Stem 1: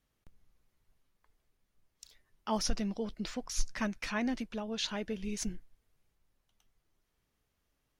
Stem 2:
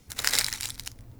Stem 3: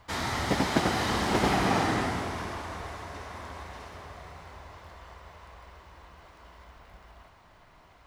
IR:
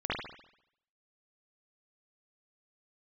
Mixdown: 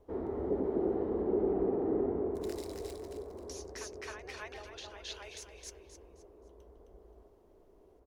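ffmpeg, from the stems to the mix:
-filter_complex "[0:a]highpass=frequency=630:width=0.5412,highpass=frequency=630:width=1.3066,volume=-2.5dB,asplit=3[link_01][link_02][link_03];[link_01]atrim=end=0.96,asetpts=PTS-STARTPTS,afade=type=out:start_time=0.956:duration=0.004:curve=hsin[link_04];[link_02]atrim=start=0.96:end=3.49,asetpts=PTS-STARTPTS,volume=0[link_05];[link_03]atrim=start=3.49,asetpts=PTS-STARTPTS,afade=type=in:duration=0.004:curve=hsin[link_06];[link_04][link_05][link_06]concat=n=3:v=0:a=1,asplit=2[link_07][link_08];[link_08]volume=-6dB[link_09];[1:a]alimiter=limit=-8.5dB:level=0:latency=1:release=271,acrossover=split=2100[link_10][link_11];[link_10]aeval=exprs='val(0)*(1-0.7/2+0.7/2*cos(2*PI*1.3*n/s))':channel_layout=same[link_12];[link_11]aeval=exprs='val(0)*(1-0.7/2-0.7/2*cos(2*PI*1.3*n/s))':channel_layout=same[link_13];[link_12][link_13]amix=inputs=2:normalize=0,adelay=2250,volume=-18dB,asplit=2[link_14][link_15];[link_15]volume=-7.5dB[link_16];[2:a]alimiter=limit=-21.5dB:level=0:latency=1:release=22,lowpass=frequency=410:width_type=q:width=4.9,volume=-3dB[link_17];[link_07][link_14]amix=inputs=2:normalize=0,acompressor=threshold=-47dB:ratio=6,volume=0dB[link_18];[link_09][link_16]amix=inputs=2:normalize=0,aecho=0:1:263|526|789|1052:1|0.31|0.0961|0.0298[link_19];[link_17][link_18][link_19]amix=inputs=3:normalize=0,equalizer=frequency=130:width=1.2:gain=-12.5"

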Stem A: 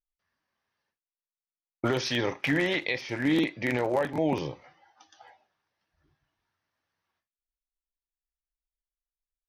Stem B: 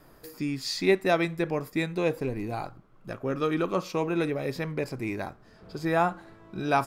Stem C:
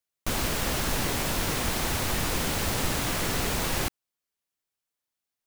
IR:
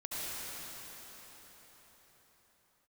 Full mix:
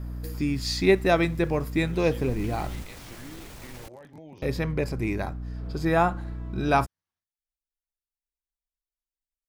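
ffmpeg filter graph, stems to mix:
-filter_complex "[0:a]bass=frequency=250:gain=5,treble=frequency=4000:gain=8,acompressor=threshold=-32dB:ratio=4,volume=-13dB[link_01];[1:a]aeval=exprs='val(0)+0.0112*(sin(2*PI*60*n/s)+sin(2*PI*2*60*n/s)/2+sin(2*PI*3*60*n/s)/3+sin(2*PI*4*60*n/s)/4+sin(2*PI*5*60*n/s)/5)':channel_layout=same,volume=2dB,asplit=3[link_02][link_03][link_04];[link_02]atrim=end=2.83,asetpts=PTS-STARTPTS,afade=type=out:start_time=2.826:duration=0.004:curve=hsin[link_05];[link_03]atrim=start=2.83:end=4.42,asetpts=PTS-STARTPTS,volume=0[link_06];[link_04]atrim=start=4.42,asetpts=PTS-STARTPTS,afade=type=in:duration=0.004:curve=hsin[link_07];[link_05][link_06][link_07]concat=n=3:v=0:a=1[link_08];[2:a]alimiter=limit=-23.5dB:level=0:latency=1,acompressor=threshold=-32dB:ratio=6,volume=-9.5dB,afade=type=in:start_time=1.98:duration=0.65:silence=0.266073[link_09];[link_01][link_08][link_09]amix=inputs=3:normalize=0,lowshelf=frequency=160:gain=5.5"

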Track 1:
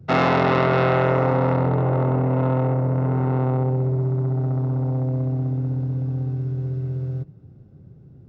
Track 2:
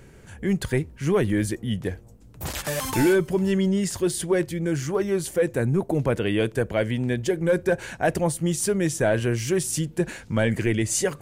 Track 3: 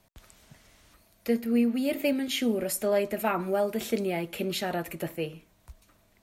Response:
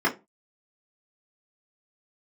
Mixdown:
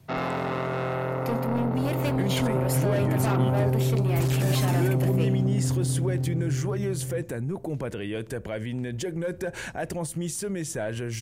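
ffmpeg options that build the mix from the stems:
-filter_complex "[0:a]dynaudnorm=framelen=240:gausssize=17:maxgain=11dB,volume=-10.5dB[link_01];[1:a]alimiter=level_in=0.5dB:limit=-24dB:level=0:latency=1:release=96,volume=-0.5dB,adelay=1750,volume=1dB[link_02];[2:a]asoftclip=type=tanh:threshold=-27.5dB,volume=1.5dB[link_03];[link_01][link_02][link_03]amix=inputs=3:normalize=0"

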